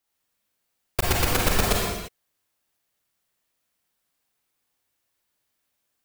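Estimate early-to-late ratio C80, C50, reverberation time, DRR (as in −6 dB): 1.0 dB, −1.5 dB, non-exponential decay, −3.0 dB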